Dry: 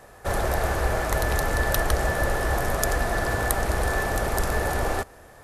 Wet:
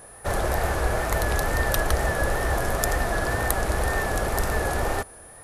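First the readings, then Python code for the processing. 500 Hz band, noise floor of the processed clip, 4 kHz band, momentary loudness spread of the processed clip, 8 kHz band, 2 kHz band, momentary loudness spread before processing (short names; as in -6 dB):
0.0 dB, -46 dBFS, 0.0 dB, 3 LU, +0.5 dB, 0.0 dB, 3 LU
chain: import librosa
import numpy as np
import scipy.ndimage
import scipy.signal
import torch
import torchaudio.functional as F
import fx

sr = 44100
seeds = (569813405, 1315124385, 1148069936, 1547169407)

y = fx.wow_flutter(x, sr, seeds[0], rate_hz=2.1, depth_cents=60.0)
y = y + 10.0 ** (-46.0 / 20.0) * np.sin(2.0 * np.pi * 9800.0 * np.arange(len(y)) / sr)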